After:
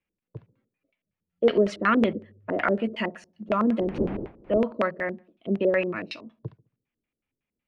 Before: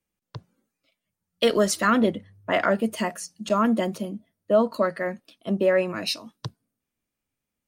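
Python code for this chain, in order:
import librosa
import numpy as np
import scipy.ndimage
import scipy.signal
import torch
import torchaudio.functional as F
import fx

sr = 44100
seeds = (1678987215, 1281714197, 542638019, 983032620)

y = fx.dmg_wind(x, sr, seeds[0], corner_hz=440.0, level_db=-31.0, at=(3.79, 4.57), fade=0.02)
y = fx.echo_filtered(y, sr, ms=69, feedback_pct=38, hz=1400.0, wet_db=-19.0)
y = fx.filter_lfo_lowpass(y, sr, shape='square', hz=5.4, low_hz=410.0, high_hz=2500.0, q=2.2)
y = y * librosa.db_to_amplitude(-3.0)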